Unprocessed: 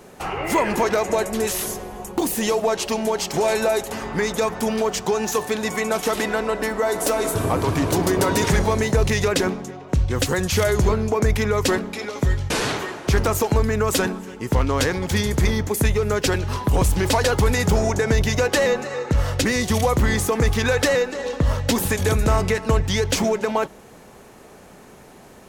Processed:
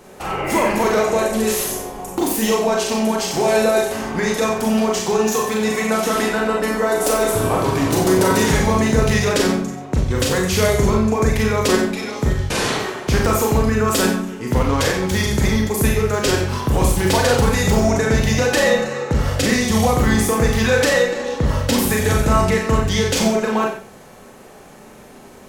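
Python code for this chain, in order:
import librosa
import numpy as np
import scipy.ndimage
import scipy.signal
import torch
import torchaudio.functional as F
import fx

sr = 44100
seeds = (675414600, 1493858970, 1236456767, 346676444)

p1 = x + fx.echo_single(x, sr, ms=91, db=-10.5, dry=0)
y = fx.rev_schroeder(p1, sr, rt60_s=0.38, comb_ms=29, drr_db=0.0)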